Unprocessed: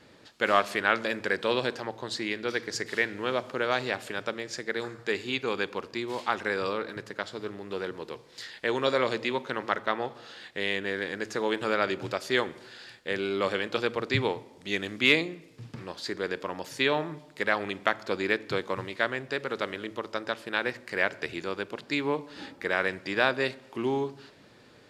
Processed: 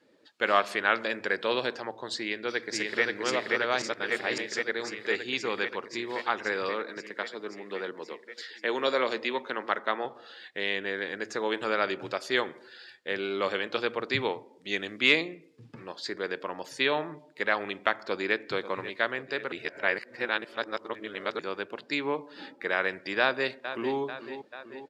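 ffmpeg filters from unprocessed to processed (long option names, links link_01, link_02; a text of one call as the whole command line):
ffmpeg -i in.wav -filter_complex "[0:a]asplit=2[link_01][link_02];[link_02]afade=type=in:start_time=2.19:duration=0.01,afade=type=out:start_time=3.03:duration=0.01,aecho=0:1:530|1060|1590|2120|2650|3180|3710|4240|4770|5300|5830|6360:0.841395|0.673116|0.538493|0.430794|0.344635|0.275708|0.220567|0.176453|0.141163|0.11293|0.0903441|0.0722753[link_03];[link_01][link_03]amix=inputs=2:normalize=0,asettb=1/sr,asplit=3[link_04][link_05][link_06];[link_04]atrim=end=6.694[link_07];[link_05]atrim=start=6.69:end=10.05,asetpts=PTS-STARTPTS,afade=type=in:duration=0.004:curve=qsin,afade=type=out:start_time=3.356:duration=0.004:curve=qsin,highpass=frequency=160:width=0.5412,highpass=frequency=160:width=1.3066[link_08];[link_06]atrim=start=10.046[link_09];[link_07][link_08]acrossfade=duration=0.004:curve1=hsin:curve2=qsin[link_10];[link_10][link_09]acrossfade=duration=0.004:curve1=qsin:curve2=hsin,asplit=2[link_11][link_12];[link_12]afade=type=in:start_time=17.96:duration=0.01,afade=type=out:start_time=18.36:duration=0.01,aecho=0:1:540|1080|1620|2160|2700|3240:0.211349|0.126809|0.0760856|0.0456514|0.0273908|0.0164345[link_13];[link_11][link_13]amix=inputs=2:normalize=0,asplit=2[link_14][link_15];[link_15]afade=type=in:start_time=23.2:duration=0.01,afade=type=out:start_time=23.97:duration=0.01,aecho=0:1:440|880|1320|1760|2200|2640|3080|3520:0.281838|0.183195|0.119077|0.0773998|0.0503099|0.0327014|0.0212559|0.0138164[link_16];[link_14][link_16]amix=inputs=2:normalize=0,asplit=5[link_17][link_18][link_19][link_20][link_21];[link_17]atrim=end=3.822[link_22];[link_18]atrim=start=3.818:end=4.382,asetpts=PTS-STARTPTS,areverse[link_23];[link_19]atrim=start=4.378:end=19.522[link_24];[link_20]atrim=start=19.518:end=21.392,asetpts=PTS-STARTPTS,areverse[link_25];[link_21]atrim=start=21.388[link_26];[link_22][link_23]acrossfade=duration=0.004:curve1=hsin:curve2=hsin[link_27];[link_27][link_24]acrossfade=duration=0.004:curve1=hsin:curve2=hsin[link_28];[link_28][link_25]acrossfade=duration=0.004:curve1=hsin:curve2=hsin[link_29];[link_29][link_26]acrossfade=duration=0.004:curve1=hsin:curve2=hsin,highpass=frequency=290:poles=1,afftdn=noise_reduction=13:noise_floor=-50" out.wav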